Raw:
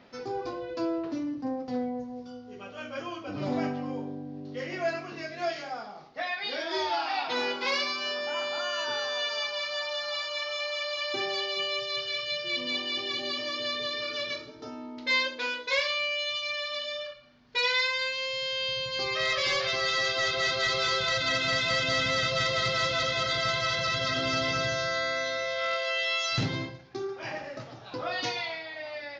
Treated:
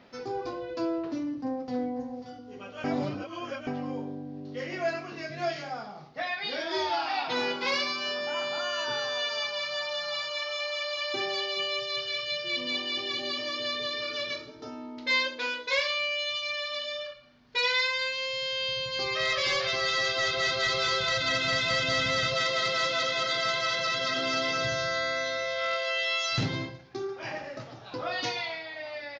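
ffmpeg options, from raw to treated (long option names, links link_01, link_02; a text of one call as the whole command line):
ffmpeg -i in.wav -filter_complex "[0:a]asplit=2[link_01][link_02];[link_02]afade=type=in:start_time=1.24:duration=0.01,afade=type=out:start_time=1.84:duration=0.01,aecho=0:1:540|1080|1620:0.281838|0.0845515|0.0253654[link_03];[link_01][link_03]amix=inputs=2:normalize=0,asettb=1/sr,asplit=3[link_04][link_05][link_06];[link_04]atrim=end=5.294[link_07];[link_05]atrim=start=5.29:end=10.31,asetpts=PTS-STARTPTS,afade=type=in:duration=0.004:curve=qsin,afade=type=out:start_time=5.016:duration=0.004:curve=qsin,equalizer=frequency=140:width=1.5:gain=10[link_08];[link_06]atrim=start=10.306[link_09];[link_07][link_08]acrossfade=duration=0.004:curve1=hsin:curve2=qsin[link_10];[link_10][link_09]acrossfade=duration=0.004:curve1=qsin:curve2=hsin,asettb=1/sr,asplit=3[link_11][link_12][link_13];[link_11]atrim=end=22.344[link_14];[link_12]atrim=start=22.34:end=24.62,asetpts=PTS-STARTPTS,afade=type=in:duration=0.004:curve=qsin,afade=type=out:start_time=2.276:duration=0.004:curve=qsin,highpass=220[link_15];[link_13]atrim=start=24.616[link_16];[link_14][link_15]acrossfade=duration=0.004:curve1=hsin:curve2=qsin[link_17];[link_17][link_16]acrossfade=duration=0.004:curve1=qsin:curve2=hsin,asplit=3[link_18][link_19][link_20];[link_18]atrim=end=2.842[link_21];[link_19]atrim=start=2.838:end=3.672,asetpts=PTS-STARTPTS,areverse[link_22];[link_20]atrim=start=3.668[link_23];[link_21][link_22]acrossfade=duration=0.004:curve1=hsin:curve2=hsin[link_24];[link_24][link_23]acrossfade=duration=0.004:curve1=hsin:curve2=hsin" out.wav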